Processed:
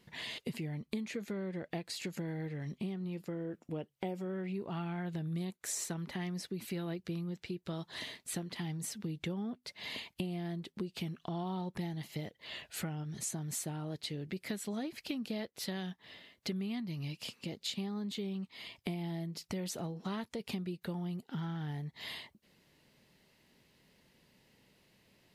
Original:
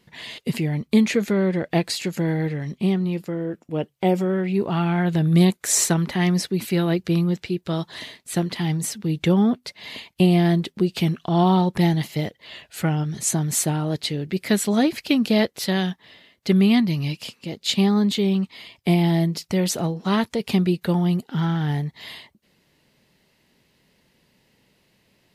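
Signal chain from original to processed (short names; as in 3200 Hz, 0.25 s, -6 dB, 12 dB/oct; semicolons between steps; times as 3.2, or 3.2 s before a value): compressor 5:1, threshold -33 dBFS, peak gain reduction 19 dB; gain -4.5 dB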